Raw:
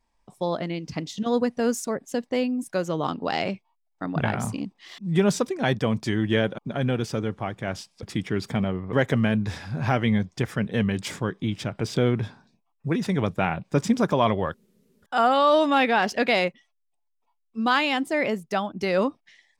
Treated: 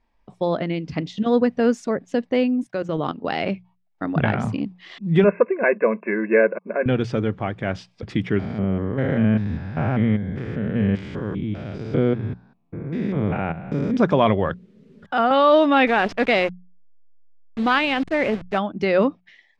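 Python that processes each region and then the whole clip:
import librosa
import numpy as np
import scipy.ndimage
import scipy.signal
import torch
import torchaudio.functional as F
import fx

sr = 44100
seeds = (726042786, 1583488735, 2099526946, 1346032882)

y = fx.chain(x, sr, fx.highpass(hz=50.0, slope=12),
    fx.level_steps(step_db=14), at=(2.66, 3.49))
y = fx.chain(y, sr, fx.brickwall_bandpass(low_hz=190.0, high_hz=2700.0),
    fx.comb(ms=1.9, depth=0.79), at=(5.24, 6.86))
y = fx.chain(y, sr, fx.spec_steps(hold_ms=200),
    fx.high_shelf(hz=2200.0, db=-9.0), at=(8.39, 13.97))
y = fx.chain(y, sr, fx.peak_eq(hz=160.0, db=5.5, octaves=0.92),
    fx.band_squash(depth_pct=40), at=(14.5, 15.31))
y = fx.chain(y, sr, fx.delta_hold(step_db=-31.0),
    fx.transformer_sat(knee_hz=760.0), at=(15.87, 18.58))
y = scipy.signal.sosfilt(scipy.signal.butter(2, 3000.0, 'lowpass', fs=sr, output='sos'), y)
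y = fx.peak_eq(y, sr, hz=960.0, db=-4.0, octaves=0.8)
y = fx.hum_notches(y, sr, base_hz=60, count=3)
y = F.gain(torch.from_numpy(y), 5.5).numpy()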